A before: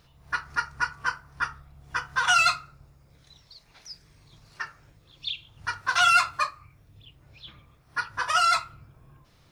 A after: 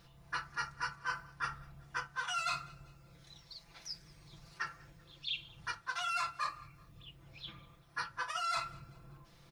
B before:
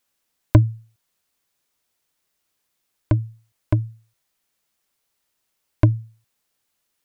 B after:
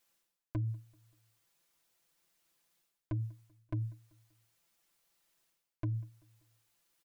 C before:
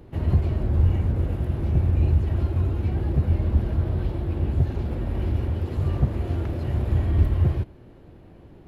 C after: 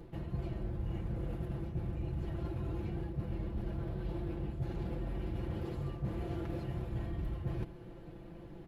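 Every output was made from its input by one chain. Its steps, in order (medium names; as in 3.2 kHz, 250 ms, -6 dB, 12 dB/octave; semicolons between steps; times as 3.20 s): comb 5.9 ms, depth 67%; reverse; compression 8:1, threshold -31 dBFS; reverse; feedback delay 193 ms, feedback 46%, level -24 dB; trim -3 dB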